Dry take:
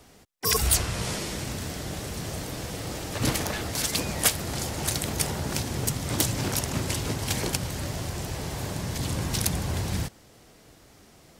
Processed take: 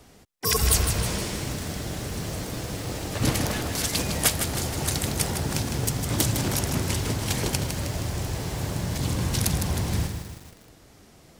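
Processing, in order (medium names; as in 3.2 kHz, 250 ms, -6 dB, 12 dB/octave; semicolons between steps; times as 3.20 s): bass shelf 330 Hz +3 dB; bit-crushed delay 157 ms, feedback 55%, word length 7-bit, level -7 dB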